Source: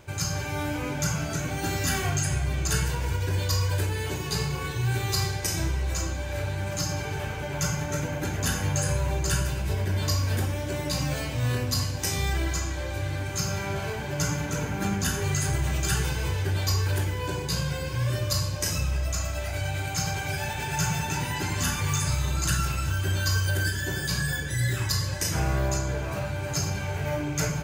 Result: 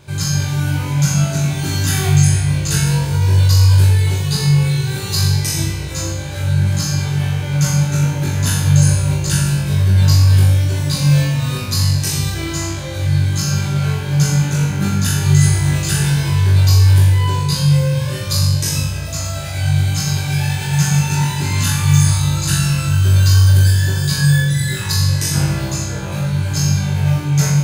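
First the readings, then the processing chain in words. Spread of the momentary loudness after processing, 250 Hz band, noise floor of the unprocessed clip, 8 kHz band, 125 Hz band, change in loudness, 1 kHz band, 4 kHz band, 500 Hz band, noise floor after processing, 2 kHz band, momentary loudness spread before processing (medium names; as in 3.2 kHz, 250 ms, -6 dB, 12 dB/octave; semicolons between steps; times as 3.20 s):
8 LU, +13.0 dB, -33 dBFS, +9.0 dB, +15.0 dB, +12.0 dB, +4.5 dB, +9.5 dB, +3.5 dB, -23 dBFS, +5.5 dB, 4 LU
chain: fifteen-band graphic EQ 160 Hz +11 dB, 4 kHz +7 dB, 10 kHz +6 dB; on a send: flutter echo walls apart 3.6 m, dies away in 0.65 s; on the sum: trim +1 dB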